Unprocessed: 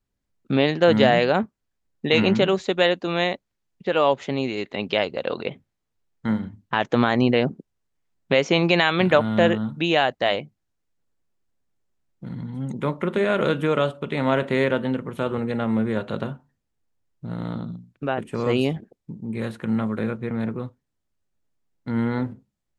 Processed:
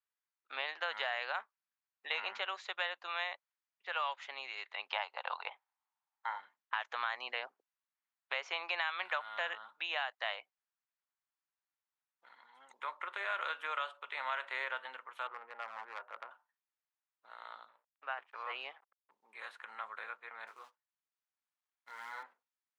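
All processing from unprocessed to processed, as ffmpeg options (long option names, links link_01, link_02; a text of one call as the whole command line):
ffmpeg -i in.wav -filter_complex "[0:a]asettb=1/sr,asplit=3[link_01][link_02][link_03];[link_01]atrim=end=4.914[link_04];[link_02]atrim=start=4.91:end=6.4,asetpts=PTS-STARTPTS,afade=type=in:duration=0.004:curve=qsin,afade=type=out:start_time=1.486:duration=0.004:curve=qsin,highpass=280,equalizer=frequency=860:width_type=o:width=0.72:gain=14.5[link_05];[link_03]atrim=start=6.396[link_06];[link_04][link_05]acrossfade=duration=0.004:curve1=hsin:curve2=qsin[link_07];[link_07][link_06]acrossfade=duration=0.004:curve1=qsin:curve2=hsin,asettb=1/sr,asplit=3[link_08][link_09][link_10];[link_08]atrim=end=15.274[link_11];[link_09]atrim=start=15.27:end=16.31,asetpts=PTS-STARTPTS,afade=type=in:duration=0.004:curve=qsin,afade=type=out:start_time=1.036:duration=0.004:curve=qsin,lowpass=2000,adynamicsmooth=sensitivity=1:basefreq=1200,aeval=exprs='0.133*(abs(mod(val(0)/0.133+3,4)-2)-1)':channel_layout=same[link_12];[link_10]atrim=start=16.306[link_13];[link_11][link_12]acrossfade=duration=0.004:curve1=hsin:curve2=qsin[link_14];[link_14][link_13]acrossfade=duration=0.004:curve1=qsin:curve2=hsin,asettb=1/sr,asplit=3[link_15][link_16][link_17];[link_15]atrim=end=17.684[link_18];[link_16]atrim=start=17.68:end=19.11,asetpts=PTS-STARTPTS,afade=type=in:duration=0.004:curve=qsin,afade=type=out:start_time=1.426:duration=0.004:curve=qsin,lowshelf=frequency=140:gain=-7.5,aeval=exprs='sgn(val(0))*max(abs(val(0))-0.00447,0)':channel_layout=same,highpass=110,lowpass=2900[link_19];[link_17]atrim=start=19.106[link_20];[link_18][link_19]acrossfade=duration=0.004:curve1=hsin:curve2=qsin[link_21];[link_21][link_20]acrossfade=duration=0.004:curve1=qsin:curve2=hsin,asettb=1/sr,asplit=3[link_22][link_23][link_24];[link_22]atrim=end=20.474[link_25];[link_23]atrim=start=20.47:end=22.23,asetpts=PTS-STARTPTS,afade=type=in:duration=0.004:curve=qsin,afade=type=out:start_time=1.756:duration=0.004:curve=qsin,lowshelf=frequency=160:gain=11.5,flanger=delay=20:depth=4.7:speed=1.6,acrusher=bits=7:mode=log:mix=0:aa=0.000001[link_26];[link_24]atrim=start=22.226[link_27];[link_25][link_26]acrossfade=duration=0.004:curve1=hsin:curve2=qsin[link_28];[link_28][link_27]acrossfade=duration=0.004:curve1=qsin:curve2=hsin,highpass=frequency=950:width=0.5412,highpass=frequency=950:width=1.3066,aemphasis=mode=reproduction:type=75kf,acrossover=split=1200|5100[link_29][link_30][link_31];[link_29]acompressor=threshold=-35dB:ratio=4[link_32];[link_30]acompressor=threshold=-31dB:ratio=4[link_33];[link_31]acompressor=threshold=-54dB:ratio=4[link_34];[link_32][link_33][link_34]amix=inputs=3:normalize=0,volume=-4.5dB" out.wav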